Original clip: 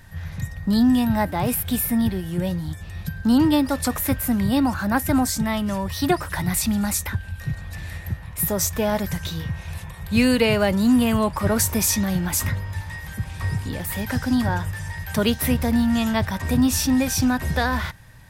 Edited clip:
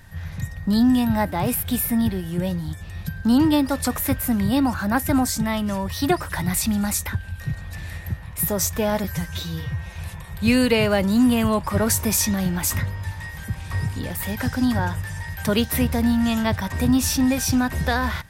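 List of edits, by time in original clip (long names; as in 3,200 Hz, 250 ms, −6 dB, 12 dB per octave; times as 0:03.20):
0:09.04–0:09.65: time-stretch 1.5×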